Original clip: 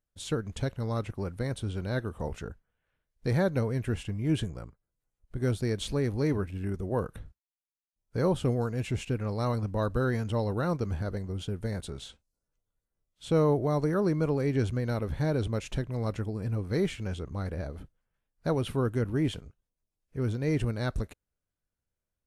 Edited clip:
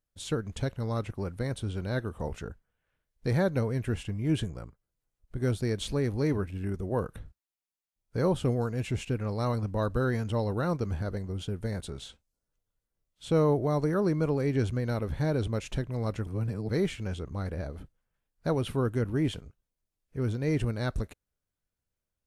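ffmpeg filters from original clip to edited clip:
-filter_complex "[0:a]asplit=3[a][b][c];[a]atrim=end=16.272[d];[b]atrim=start=16.268:end=16.692,asetpts=PTS-STARTPTS,areverse[e];[c]atrim=start=16.688[f];[d][e]acrossfade=d=0.004:c1=hsin:c2=hsin[g];[g][f]acrossfade=d=0.004:c1=hsin:c2=hsin"

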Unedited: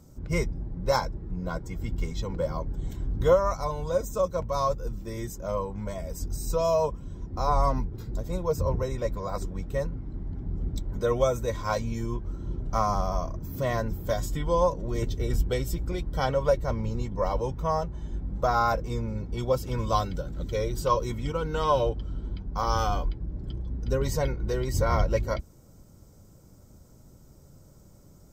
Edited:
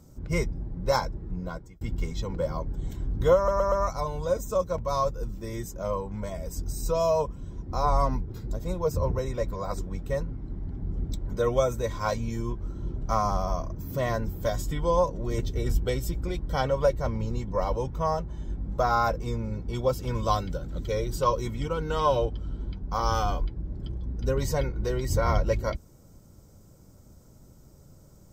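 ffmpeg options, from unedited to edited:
-filter_complex "[0:a]asplit=5[a][b][c][d][e];[a]atrim=end=1.81,asetpts=PTS-STARTPTS,afade=t=out:st=1.36:d=0.45[f];[b]atrim=start=1.81:end=3.482,asetpts=PTS-STARTPTS,afade=t=in:d=0.004:c=hsin[g];[c]atrim=start=3.358:end=3.482[h];[d]atrim=start=3.358:end=3.482[i];[e]atrim=start=3.358[j];[f][g]concat=n=2:v=0:a=1[k];[k][h]acrossfade=d=0.004:c1=hsin:c2=hsin[l];[l][i]acrossfade=d=0.004:c1=hsin:c2=hsin[m];[m][j]acrossfade=d=0.004:c1=hsin:c2=hsin"

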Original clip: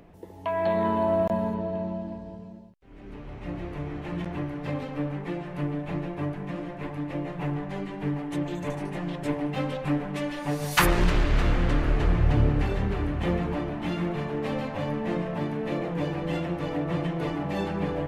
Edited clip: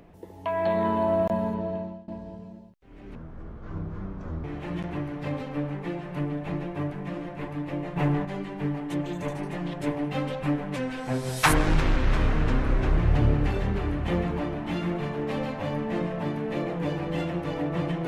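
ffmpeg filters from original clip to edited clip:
-filter_complex "[0:a]asplit=8[a][b][c][d][e][f][g][h];[a]atrim=end=2.08,asetpts=PTS-STARTPTS,afade=t=out:st=1.72:d=0.36:silence=0.0707946[i];[b]atrim=start=2.08:end=3.154,asetpts=PTS-STARTPTS,afade=t=in:d=0.004:c=hsin:silence=0.0707946[j];[c]atrim=start=3.15:end=3.86,asetpts=PTS-STARTPTS,asetrate=24255,aresample=44100,atrim=end_sample=56929,asetpts=PTS-STARTPTS[k];[d]atrim=start=3.856:end=7.382[l];[e]atrim=start=7.378:end=7.672,asetpts=PTS-STARTPTS,volume=5.5dB[m];[f]atrim=start=7.668:end=10.184[n];[g]atrim=start=10.18:end=12.13,asetpts=PTS-STARTPTS,asetrate=38808,aresample=44100[o];[h]atrim=start=12.126[p];[i][j]concat=n=2:v=0:a=1[q];[q][k]acrossfade=d=0.004:c1=hsin:c2=hsin[r];[r][l]acrossfade=d=0.004:c1=hsin:c2=hsin[s];[s][m]acrossfade=d=0.004:c1=hsin:c2=hsin[t];[t][n]acrossfade=d=0.004:c1=hsin:c2=hsin[u];[u][o]acrossfade=d=0.004:c1=hsin:c2=hsin[v];[v][p]acrossfade=d=0.004:c1=hsin:c2=hsin"

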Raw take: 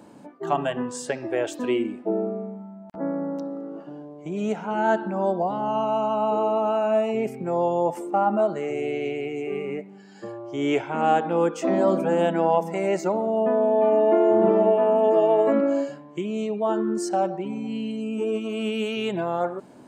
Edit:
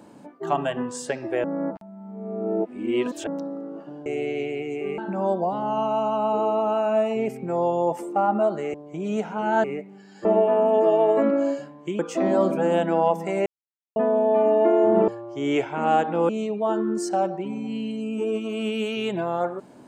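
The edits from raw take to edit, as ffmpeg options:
-filter_complex "[0:a]asplit=13[a][b][c][d][e][f][g][h][i][j][k][l][m];[a]atrim=end=1.442[n];[b]atrim=start=1.438:end=3.272,asetpts=PTS-STARTPTS,areverse[o];[c]atrim=start=3.268:end=4.062[p];[d]atrim=start=8.718:end=9.642[q];[e]atrim=start=4.958:end=8.722[r];[f]atrim=start=4.058:end=4.962[s];[g]atrim=start=9.638:end=10.252[t];[h]atrim=start=14.548:end=16.292[u];[i]atrim=start=11.458:end=12.93,asetpts=PTS-STARTPTS,afade=t=out:st=1.468:d=0.004:c=hsin[v];[j]atrim=start=12.93:end=13.43,asetpts=PTS-STARTPTS,volume=0[w];[k]atrim=start=13.43:end=14.552,asetpts=PTS-STARTPTS,afade=t=in:d=0.004:c=hsin[x];[l]atrim=start=10.248:end=11.462[y];[m]atrim=start=16.288[z];[n][o]acrossfade=d=0.004:c1=hsin:c2=hsin[aa];[aa][p]acrossfade=d=0.004:c1=hsin:c2=hsin[ab];[ab][q]acrossfade=d=0.004:c1=hsin:c2=hsin[ac];[ac][r]acrossfade=d=0.004:c1=hsin:c2=hsin[ad];[ad][s]acrossfade=d=0.004:c1=hsin:c2=hsin[ae];[ae][t]acrossfade=d=0.004:c1=hsin:c2=hsin[af];[af][u]acrossfade=d=0.004:c1=hsin:c2=hsin[ag];[v][w][x]concat=n=3:v=0:a=1[ah];[ag][ah]acrossfade=d=0.004:c1=hsin:c2=hsin[ai];[ai][y]acrossfade=d=0.004:c1=hsin:c2=hsin[aj];[aj][z]acrossfade=d=0.004:c1=hsin:c2=hsin"

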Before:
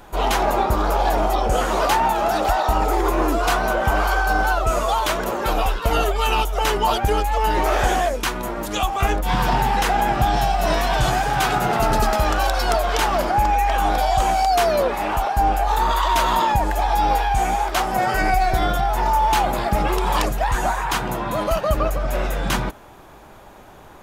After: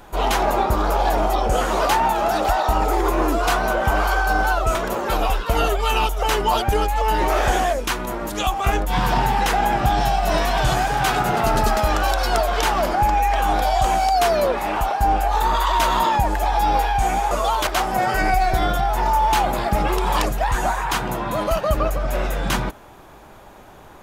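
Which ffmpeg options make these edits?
-filter_complex "[0:a]asplit=4[a][b][c][d];[a]atrim=end=4.752[e];[b]atrim=start=5.108:end=17.672[f];[c]atrim=start=4.748:end=5.112[g];[d]atrim=start=17.668[h];[e][f]acrossfade=d=0.004:c1=hsin:c2=hsin[i];[i][g]acrossfade=d=0.004:c1=hsin:c2=hsin[j];[j][h]acrossfade=d=0.004:c1=hsin:c2=hsin"

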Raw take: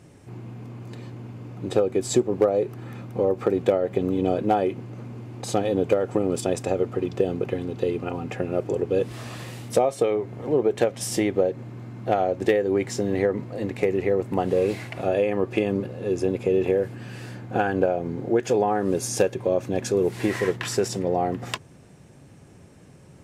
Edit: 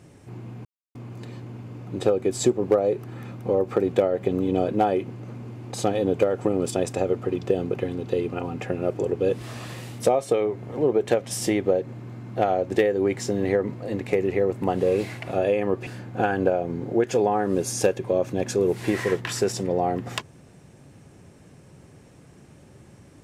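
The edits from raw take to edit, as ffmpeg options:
-filter_complex "[0:a]asplit=3[a][b][c];[a]atrim=end=0.65,asetpts=PTS-STARTPTS,afade=t=out:st=0.646:d=0.004:c=hsin,apad=pad_dur=0.3[d];[b]atrim=start=0.65:end=15.572,asetpts=PTS-STARTPTS,afade=t=in:d=0.004:c=hsin[e];[c]atrim=start=17.228[f];[d][e]concat=n=2:v=0:a=1[g];[g][f]acrossfade=d=0.004:c1=hsin:c2=hsin"

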